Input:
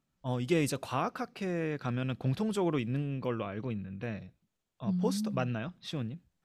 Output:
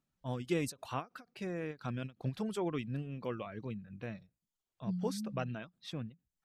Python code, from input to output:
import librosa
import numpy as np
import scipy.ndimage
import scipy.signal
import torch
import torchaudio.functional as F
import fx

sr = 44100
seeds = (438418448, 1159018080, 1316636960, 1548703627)

y = fx.dereverb_blind(x, sr, rt60_s=0.54)
y = fx.end_taper(y, sr, db_per_s=320.0)
y = y * librosa.db_to_amplitude(-4.5)